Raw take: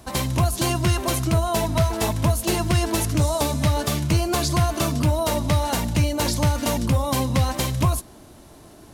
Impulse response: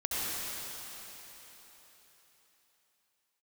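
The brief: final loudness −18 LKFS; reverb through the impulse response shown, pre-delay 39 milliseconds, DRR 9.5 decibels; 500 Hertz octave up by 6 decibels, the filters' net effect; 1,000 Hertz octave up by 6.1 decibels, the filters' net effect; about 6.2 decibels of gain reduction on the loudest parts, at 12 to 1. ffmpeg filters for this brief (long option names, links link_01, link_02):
-filter_complex "[0:a]equalizer=frequency=500:width_type=o:gain=6,equalizer=frequency=1000:width_type=o:gain=5.5,acompressor=threshold=-19dB:ratio=12,asplit=2[link_01][link_02];[1:a]atrim=start_sample=2205,adelay=39[link_03];[link_02][link_03]afir=irnorm=-1:irlink=0,volume=-17.5dB[link_04];[link_01][link_04]amix=inputs=2:normalize=0,volume=5.5dB"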